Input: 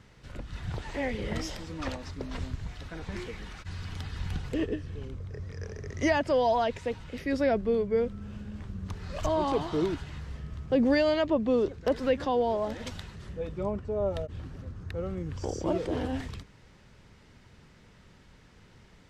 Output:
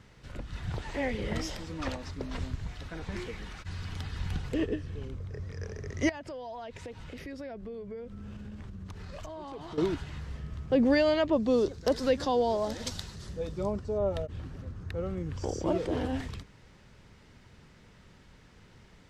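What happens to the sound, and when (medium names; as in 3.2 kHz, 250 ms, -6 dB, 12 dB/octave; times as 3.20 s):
6.09–9.78 s: compression 8:1, threshold -38 dBFS
11.33–13.98 s: resonant high shelf 3.5 kHz +7.5 dB, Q 1.5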